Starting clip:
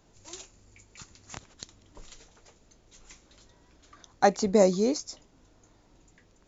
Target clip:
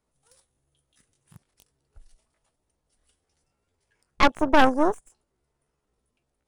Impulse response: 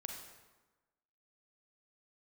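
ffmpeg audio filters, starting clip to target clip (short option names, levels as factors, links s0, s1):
-af "asetrate=62367,aresample=44100,atempo=0.707107,aeval=exprs='0.422*(cos(1*acos(clip(val(0)/0.422,-1,1)))-cos(1*PI/2))+0.15*(cos(6*acos(clip(val(0)/0.422,-1,1)))-cos(6*PI/2))':c=same,afwtdn=0.0224"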